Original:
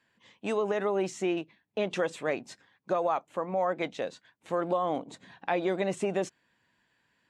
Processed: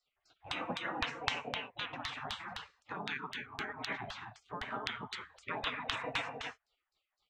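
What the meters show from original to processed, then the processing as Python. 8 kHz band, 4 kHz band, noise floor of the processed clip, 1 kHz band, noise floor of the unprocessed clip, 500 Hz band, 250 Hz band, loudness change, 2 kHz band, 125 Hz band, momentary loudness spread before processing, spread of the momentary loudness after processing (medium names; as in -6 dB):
-8.0 dB, +5.5 dB, under -85 dBFS, -7.5 dB, -74 dBFS, -18.0 dB, -13.5 dB, -8.0 dB, +0.5 dB, -8.0 dB, 10 LU, 9 LU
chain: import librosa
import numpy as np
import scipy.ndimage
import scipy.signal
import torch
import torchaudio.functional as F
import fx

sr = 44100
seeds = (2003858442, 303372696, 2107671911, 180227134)

y = fx.rev_gated(x, sr, seeds[0], gate_ms=300, shape='rising', drr_db=0.5)
y = fx.filter_lfo_lowpass(y, sr, shape='saw_down', hz=3.9, low_hz=270.0, high_hz=3800.0, q=2.1)
y = fx.spec_gate(y, sr, threshold_db=-25, keep='weak')
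y = y * librosa.db_to_amplitude(8.0)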